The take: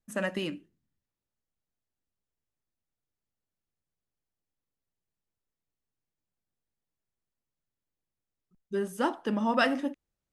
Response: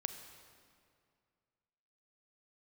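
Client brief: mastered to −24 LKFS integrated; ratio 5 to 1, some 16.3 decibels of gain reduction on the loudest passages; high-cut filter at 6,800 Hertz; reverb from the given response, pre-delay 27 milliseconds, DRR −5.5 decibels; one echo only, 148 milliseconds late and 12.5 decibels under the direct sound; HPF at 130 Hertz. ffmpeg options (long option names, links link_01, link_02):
-filter_complex "[0:a]highpass=130,lowpass=6800,acompressor=threshold=-39dB:ratio=5,aecho=1:1:148:0.237,asplit=2[link_01][link_02];[1:a]atrim=start_sample=2205,adelay=27[link_03];[link_02][link_03]afir=irnorm=-1:irlink=0,volume=6dB[link_04];[link_01][link_04]amix=inputs=2:normalize=0,volume=12.5dB"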